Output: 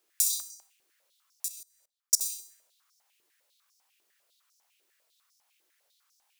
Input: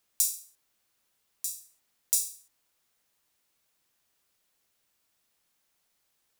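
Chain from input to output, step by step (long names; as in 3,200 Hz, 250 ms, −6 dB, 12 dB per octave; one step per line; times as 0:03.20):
delay with a high-pass on its return 64 ms, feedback 44%, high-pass 2,100 Hz, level −6.5 dB
0:01.48–0:02.21: output level in coarse steps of 23 dB
high-pass on a step sequencer 10 Hz 370–5,500 Hz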